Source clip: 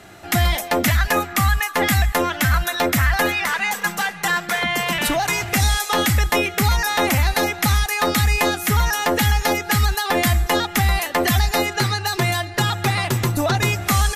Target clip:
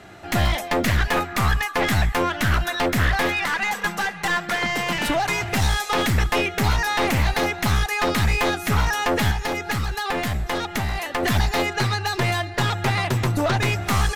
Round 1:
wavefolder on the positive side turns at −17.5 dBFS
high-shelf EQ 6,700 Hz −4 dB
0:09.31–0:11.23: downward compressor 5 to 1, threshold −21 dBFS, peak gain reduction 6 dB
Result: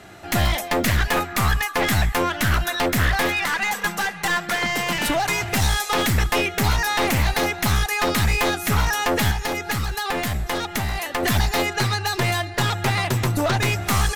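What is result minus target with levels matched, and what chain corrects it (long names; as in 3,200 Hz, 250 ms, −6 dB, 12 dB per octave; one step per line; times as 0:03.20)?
8,000 Hz band +3.5 dB
wavefolder on the positive side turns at −17.5 dBFS
high-shelf EQ 6,700 Hz −11.5 dB
0:09.31–0:11.23: downward compressor 5 to 1, threshold −21 dBFS, peak gain reduction 6 dB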